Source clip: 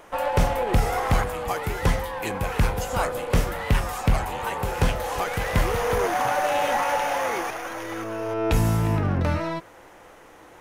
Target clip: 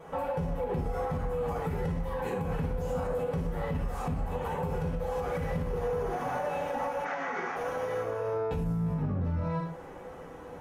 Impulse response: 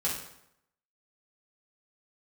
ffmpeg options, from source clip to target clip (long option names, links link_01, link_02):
-filter_complex "[0:a]acompressor=threshold=-34dB:ratio=2.5,tiltshelf=frequency=1100:gain=7.5[link_01];[1:a]atrim=start_sample=2205,afade=type=out:start_time=0.22:duration=0.01,atrim=end_sample=10143[link_02];[link_01][link_02]afir=irnorm=-1:irlink=0,alimiter=limit=-17.5dB:level=0:latency=1:release=104,asplit=3[link_03][link_04][link_05];[link_03]afade=type=out:start_time=7.04:duration=0.02[link_06];[link_04]highpass=190,equalizer=frequency=500:width_type=q:width=4:gain=-9,equalizer=frequency=1400:width_type=q:width=4:gain=8,equalizer=frequency=2000:width_type=q:width=4:gain=8,lowpass=frequency=6700:width=0.5412,lowpass=frequency=6700:width=1.3066,afade=type=in:start_time=7.04:duration=0.02,afade=type=out:start_time=7.55:duration=0.02[link_07];[link_05]afade=type=in:start_time=7.55:duration=0.02[link_08];[link_06][link_07][link_08]amix=inputs=3:normalize=0,volume=-6dB"